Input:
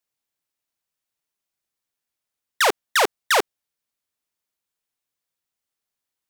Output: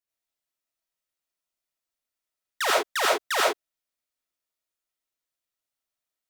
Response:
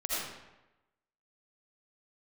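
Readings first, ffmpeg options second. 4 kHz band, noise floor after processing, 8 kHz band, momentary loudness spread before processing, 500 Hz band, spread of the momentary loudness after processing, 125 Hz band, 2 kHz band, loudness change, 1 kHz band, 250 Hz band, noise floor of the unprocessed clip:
−3.0 dB, below −85 dBFS, −3.5 dB, 2 LU, −2.5 dB, 5 LU, can't be measured, −4.0 dB, −3.5 dB, −3.5 dB, −3.5 dB, −85 dBFS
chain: -filter_complex "[1:a]atrim=start_sample=2205,afade=type=out:start_time=0.17:duration=0.01,atrim=end_sample=7938[link_01];[0:a][link_01]afir=irnorm=-1:irlink=0,volume=-7.5dB"

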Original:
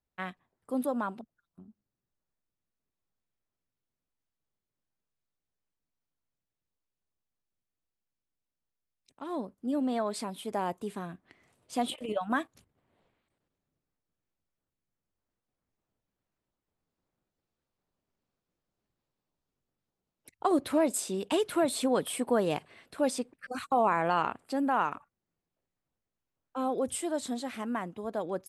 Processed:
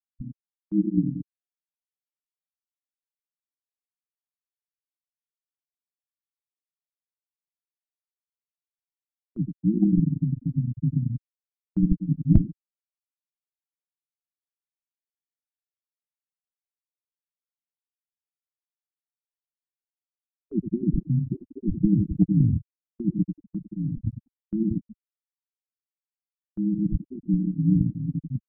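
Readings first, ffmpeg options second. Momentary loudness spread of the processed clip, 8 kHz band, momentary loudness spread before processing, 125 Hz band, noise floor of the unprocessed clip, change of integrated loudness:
13 LU, below −35 dB, 13 LU, +23.0 dB, below −85 dBFS, +5.5 dB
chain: -filter_complex "[0:a]alimiter=limit=-20.5dB:level=0:latency=1:release=21,asplit=2[link_01][link_02];[link_02]adelay=92,lowpass=frequency=900:poles=1,volume=-6dB,asplit=2[link_03][link_04];[link_04]adelay=92,lowpass=frequency=900:poles=1,volume=0.47,asplit=2[link_05][link_06];[link_06]adelay=92,lowpass=frequency=900:poles=1,volume=0.47,asplit=2[link_07][link_08];[link_08]adelay=92,lowpass=frequency=900:poles=1,volume=0.47,asplit=2[link_09][link_10];[link_10]adelay=92,lowpass=frequency=900:poles=1,volume=0.47,asplit=2[link_11][link_12];[link_12]adelay=92,lowpass=frequency=900:poles=1,volume=0.47[link_13];[link_03][link_05][link_07][link_09][link_11][link_13]amix=inputs=6:normalize=0[link_14];[link_01][link_14]amix=inputs=2:normalize=0,acrusher=samples=25:mix=1:aa=0.000001,lowshelf=frequency=340:width_type=q:width=3:gain=13,aeval=exprs='val(0)*sin(2*PI*57*n/s)':channel_layout=same,aeval=exprs='0.631*(cos(1*acos(clip(val(0)/0.631,-1,1)))-cos(1*PI/2))+0.1*(cos(3*acos(clip(val(0)/0.631,-1,1)))-cos(3*PI/2))+0.00891*(cos(6*acos(clip(val(0)/0.631,-1,1)))-cos(6*PI/2))':channel_layout=same,afftfilt=real='re*gte(hypot(re,im),0.2)':imag='im*gte(hypot(re,im),0.2)':win_size=1024:overlap=0.75,agate=range=-16dB:threshold=-46dB:ratio=16:detection=peak,asubboost=boost=8.5:cutoff=100"

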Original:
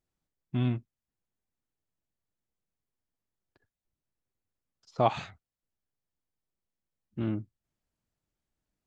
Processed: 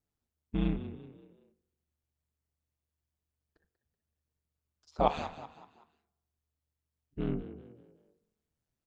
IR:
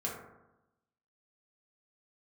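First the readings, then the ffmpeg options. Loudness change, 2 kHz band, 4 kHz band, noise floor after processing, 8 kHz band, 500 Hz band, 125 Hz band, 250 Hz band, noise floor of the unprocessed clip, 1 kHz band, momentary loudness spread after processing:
−2.5 dB, −3.0 dB, −2.5 dB, below −85 dBFS, can't be measured, −1.5 dB, −5.5 dB, −1.0 dB, below −85 dBFS, −1.5 dB, 20 LU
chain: -filter_complex "[0:a]aeval=exprs='val(0)*sin(2*PI*76*n/s)':channel_layout=same,asplit=5[link_01][link_02][link_03][link_04][link_05];[link_02]adelay=189,afreqshift=45,volume=-13.5dB[link_06];[link_03]adelay=378,afreqshift=90,volume=-21.5dB[link_07];[link_04]adelay=567,afreqshift=135,volume=-29.4dB[link_08];[link_05]adelay=756,afreqshift=180,volume=-37.4dB[link_09];[link_01][link_06][link_07][link_08][link_09]amix=inputs=5:normalize=0,asplit=2[link_10][link_11];[1:a]atrim=start_sample=2205,lowpass=1300[link_12];[link_11][link_12]afir=irnorm=-1:irlink=0,volume=-15.5dB[link_13];[link_10][link_13]amix=inputs=2:normalize=0"

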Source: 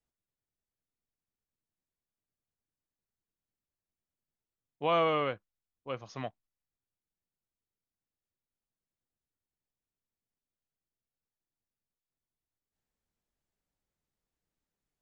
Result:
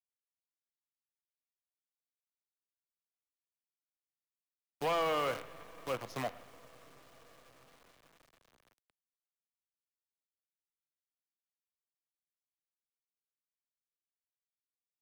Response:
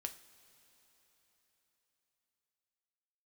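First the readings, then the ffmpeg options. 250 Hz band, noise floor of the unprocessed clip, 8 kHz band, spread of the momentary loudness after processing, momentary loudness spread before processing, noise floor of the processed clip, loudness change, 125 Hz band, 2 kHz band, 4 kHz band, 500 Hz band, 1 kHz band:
−4.5 dB, below −85 dBFS, can't be measured, 17 LU, 17 LU, below −85 dBFS, −4.0 dB, −5.0 dB, −1.5 dB, −1.5 dB, −3.0 dB, −3.0 dB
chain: -filter_complex "[0:a]asplit=2[link_01][link_02];[link_02]adelay=111,lowpass=frequency=3200:poles=1,volume=-21dB,asplit=2[link_03][link_04];[link_04]adelay=111,lowpass=frequency=3200:poles=1,volume=0.48,asplit=2[link_05][link_06];[link_06]adelay=111,lowpass=frequency=3200:poles=1,volume=0.48[link_07];[link_01][link_03][link_05][link_07]amix=inputs=4:normalize=0,asplit=2[link_08][link_09];[1:a]atrim=start_sample=2205,asetrate=22050,aresample=44100[link_10];[link_09][link_10]afir=irnorm=-1:irlink=0,volume=-4dB[link_11];[link_08][link_11]amix=inputs=2:normalize=0,acrusher=bits=7:dc=4:mix=0:aa=0.000001,acrossover=split=130|390|3700[link_12][link_13][link_14][link_15];[link_12]acompressor=threshold=-52dB:ratio=4[link_16];[link_13]acompressor=threshold=-43dB:ratio=4[link_17];[link_14]acompressor=threshold=-25dB:ratio=4[link_18];[link_15]acompressor=threshold=-48dB:ratio=4[link_19];[link_16][link_17][link_18][link_19]amix=inputs=4:normalize=0,asoftclip=type=tanh:threshold=-27.5dB"

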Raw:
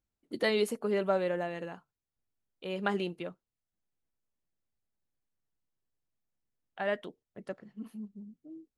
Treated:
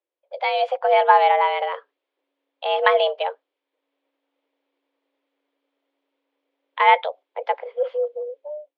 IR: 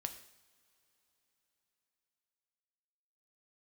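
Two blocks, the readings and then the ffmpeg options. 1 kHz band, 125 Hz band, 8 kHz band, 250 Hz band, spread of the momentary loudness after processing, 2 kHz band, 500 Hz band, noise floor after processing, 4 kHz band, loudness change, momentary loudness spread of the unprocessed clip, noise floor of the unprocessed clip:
+23.0 dB, below −40 dB, can't be measured, below −25 dB, 17 LU, +13.5 dB, +11.0 dB, −84 dBFS, +12.5 dB, +13.5 dB, 19 LU, below −85 dBFS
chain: -af "afreqshift=280,dynaudnorm=framelen=310:gausssize=5:maxgain=16dB,highpass=frequency=420:width=0.5412,highpass=frequency=420:width=1.3066,equalizer=frequency=540:width_type=q:width=4:gain=8,equalizer=frequency=950:width_type=q:width=4:gain=4,equalizer=frequency=2300:width_type=q:width=4:gain=4,equalizer=frequency=3300:width_type=q:width=4:gain=5,lowpass=frequency=3700:width=0.5412,lowpass=frequency=3700:width=1.3066,volume=-1.5dB"

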